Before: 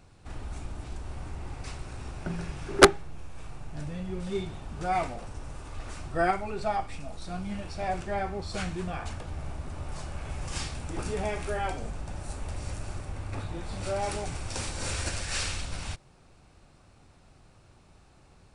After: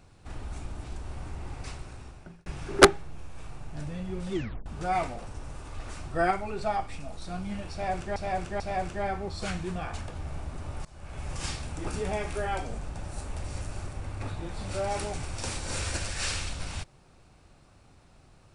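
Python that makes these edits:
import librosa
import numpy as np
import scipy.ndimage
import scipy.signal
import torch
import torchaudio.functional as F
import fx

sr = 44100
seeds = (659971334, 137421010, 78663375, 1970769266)

y = fx.edit(x, sr, fx.fade_out_span(start_s=1.66, length_s=0.8),
    fx.tape_stop(start_s=4.33, length_s=0.33),
    fx.repeat(start_s=7.72, length_s=0.44, count=3),
    fx.fade_in_from(start_s=9.97, length_s=0.43, floor_db=-22.5), tone=tone)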